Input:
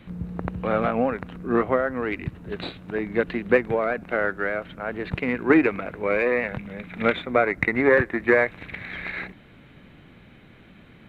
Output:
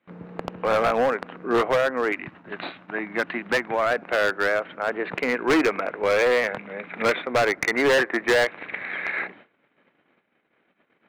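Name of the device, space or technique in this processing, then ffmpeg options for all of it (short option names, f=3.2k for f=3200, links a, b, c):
walkie-talkie: -filter_complex "[0:a]asettb=1/sr,asplit=3[a][b][c];[a]atrim=end=2.124[d];[b]atrim=start=2.12:end=3.91,asetpts=PTS-STARTPTS,afade=t=in:d=0.004:c=qsin,afade=t=out:st=1.786:d=0.004:c=qsin,equalizer=f=450:t=o:w=0.59:g=-11[e];[c]atrim=start=3.906[f];[d][e]acrossfade=d=0.004:c1=hsin:c2=qsin[g];[g][f]acrossfade=d=0.004:c1=qsin:c2=hsin,highpass=410,lowpass=2.3k,asoftclip=type=hard:threshold=-22.5dB,agate=range=-25dB:threshold=-53dB:ratio=16:detection=peak,volume=6.5dB"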